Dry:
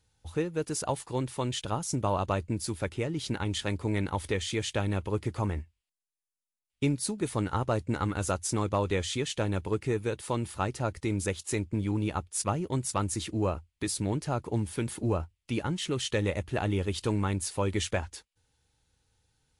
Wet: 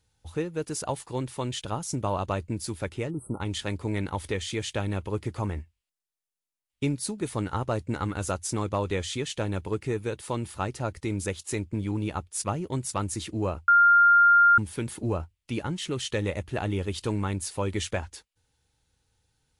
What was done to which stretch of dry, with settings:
3.1–3.41 spectral delete 1400–7900 Hz
13.68–14.58 bleep 1400 Hz -14 dBFS

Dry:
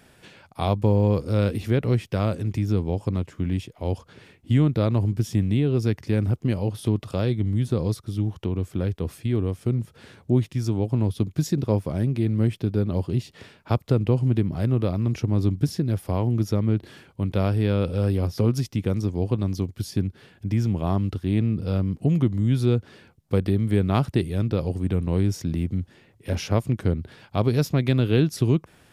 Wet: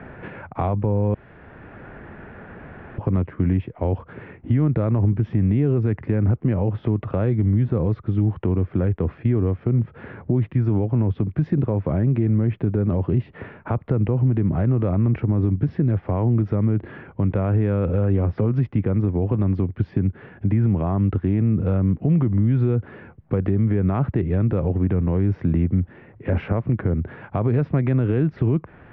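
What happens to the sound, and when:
1.14–2.98 room tone
whole clip: inverse Chebyshev low-pass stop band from 8100 Hz, stop band 70 dB; limiter -18 dBFS; three-band squash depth 40%; gain +7 dB

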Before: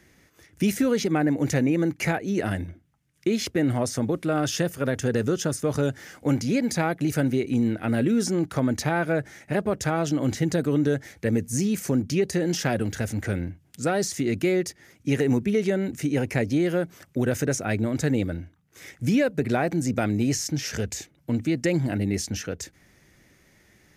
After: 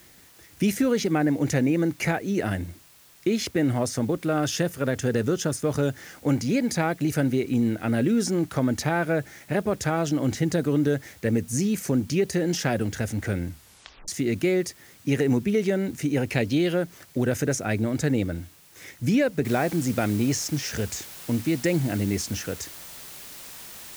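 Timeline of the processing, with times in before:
13.49 tape stop 0.59 s
16.29–16.74 band shelf 3400 Hz +8 dB 1 oct
19.45 noise floor step -54 dB -42 dB

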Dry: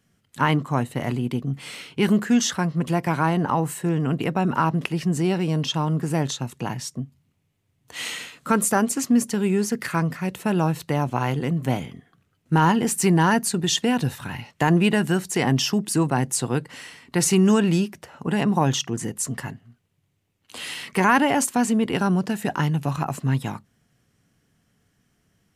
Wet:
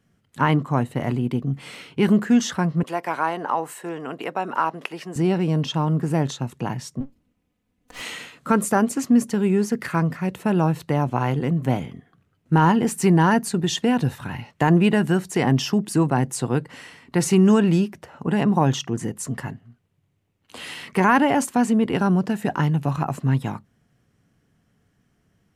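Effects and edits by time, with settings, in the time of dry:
2.83–5.16 HPF 500 Hz
7–8.02 minimum comb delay 4 ms
whole clip: high shelf 2400 Hz -8 dB; gain +2 dB

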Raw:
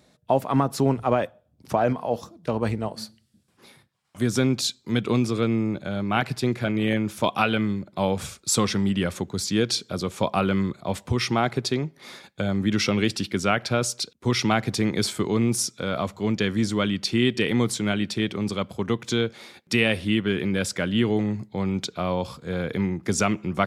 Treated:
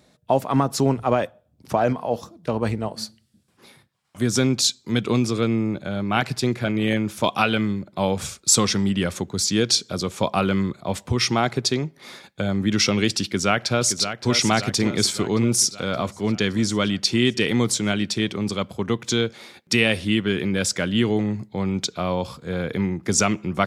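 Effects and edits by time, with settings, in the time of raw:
13.24–14.3 echo throw 0.57 s, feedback 60%, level -9 dB
whole clip: dynamic EQ 6300 Hz, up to +7 dB, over -43 dBFS, Q 0.98; gain +1.5 dB

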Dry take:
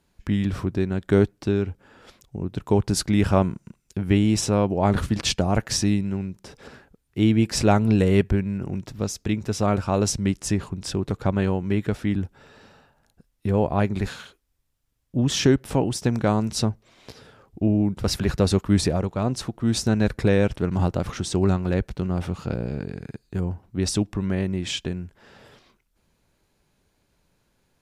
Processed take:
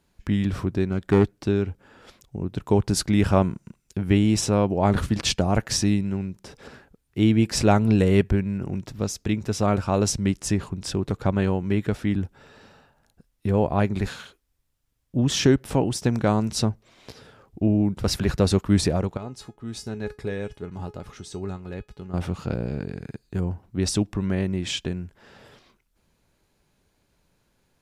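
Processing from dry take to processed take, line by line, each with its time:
0.9–1.39 self-modulated delay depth 0.21 ms
19.17–22.14 resonator 420 Hz, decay 0.18 s, mix 80%

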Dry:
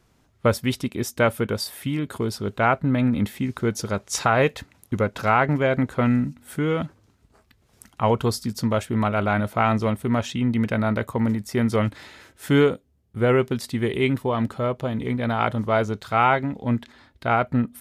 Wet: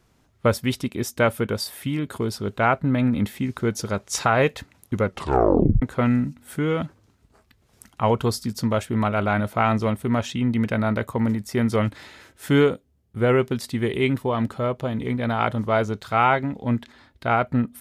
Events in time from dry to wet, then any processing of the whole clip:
5.04 tape stop 0.78 s

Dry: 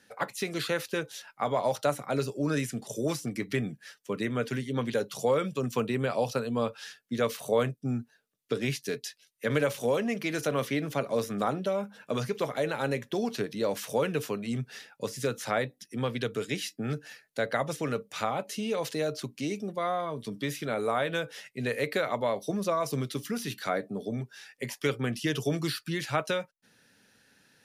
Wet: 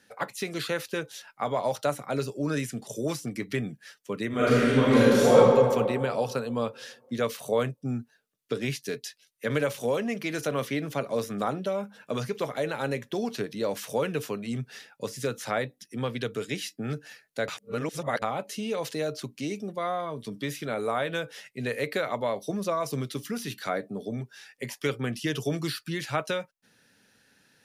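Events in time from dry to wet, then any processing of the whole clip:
4.28–5.35 reverb throw, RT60 2.2 s, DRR -11 dB
17.48–18.22 reverse

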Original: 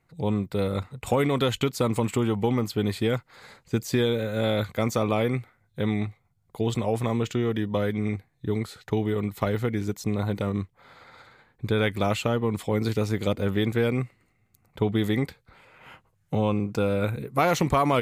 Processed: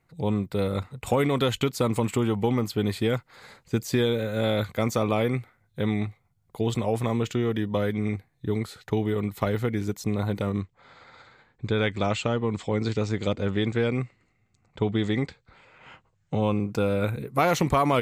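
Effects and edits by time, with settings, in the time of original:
10.6–16.42 elliptic low-pass 7800 Hz

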